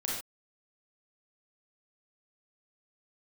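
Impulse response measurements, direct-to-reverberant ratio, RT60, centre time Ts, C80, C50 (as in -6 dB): -5.0 dB, not exponential, 54 ms, 5.0 dB, 0.5 dB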